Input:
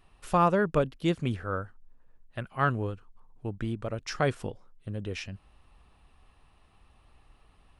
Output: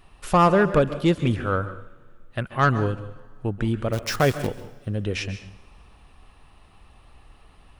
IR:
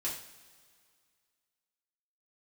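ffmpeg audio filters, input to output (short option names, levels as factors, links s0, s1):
-filter_complex "[0:a]aeval=exprs='0.251*(cos(1*acos(clip(val(0)/0.251,-1,1)))-cos(1*PI/2))+0.02*(cos(5*acos(clip(val(0)/0.251,-1,1)))-cos(5*PI/2))':c=same,asplit=3[s0][s1][s2];[s0]afade=t=out:st=3.92:d=0.02[s3];[s1]acrusher=bits=7:dc=4:mix=0:aa=0.000001,afade=t=in:st=3.92:d=0.02,afade=t=out:st=4.46:d=0.02[s4];[s2]afade=t=in:st=4.46:d=0.02[s5];[s3][s4][s5]amix=inputs=3:normalize=0,asplit=2[s6][s7];[1:a]atrim=start_sample=2205,adelay=132[s8];[s7][s8]afir=irnorm=-1:irlink=0,volume=0.188[s9];[s6][s9]amix=inputs=2:normalize=0,volume=1.88"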